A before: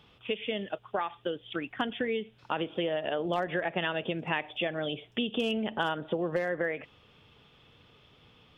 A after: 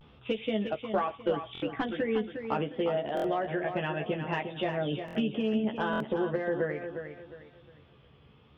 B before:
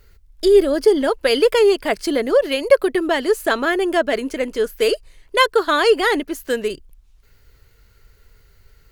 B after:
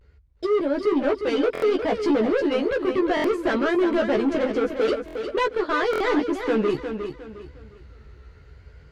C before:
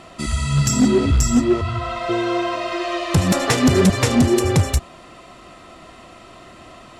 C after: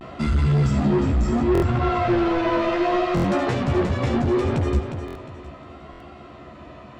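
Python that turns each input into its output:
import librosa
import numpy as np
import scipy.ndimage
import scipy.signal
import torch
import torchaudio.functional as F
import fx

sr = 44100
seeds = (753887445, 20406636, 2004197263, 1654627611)

y = scipy.signal.sosfilt(scipy.signal.butter(4, 44.0, 'highpass', fs=sr, output='sos'), x)
y = fx.low_shelf(y, sr, hz=300.0, db=3.5)
y = fx.rider(y, sr, range_db=5, speed_s=0.5)
y = np.clip(10.0 ** (19.5 / 20.0) * y, -1.0, 1.0) / 10.0 ** (19.5 / 20.0)
y = fx.vibrato(y, sr, rate_hz=0.71, depth_cents=73.0)
y = fx.spacing_loss(y, sr, db_at_10k=25)
y = fx.doubler(y, sr, ms=14.0, db=-4)
y = fx.echo_feedback(y, sr, ms=357, feedback_pct=32, wet_db=-8.0)
y = fx.buffer_glitch(y, sr, at_s=(1.53, 3.15, 5.06, 5.91), block=1024, repeats=3)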